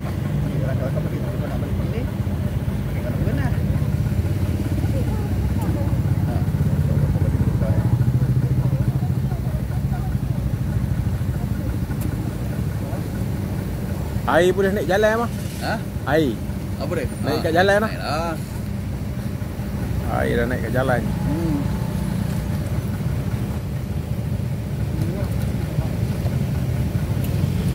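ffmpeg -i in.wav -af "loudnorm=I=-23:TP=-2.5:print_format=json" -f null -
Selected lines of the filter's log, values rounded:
"input_i" : "-22.6",
"input_tp" : "-4.1",
"input_lra" : "3.5",
"input_thresh" : "-32.6",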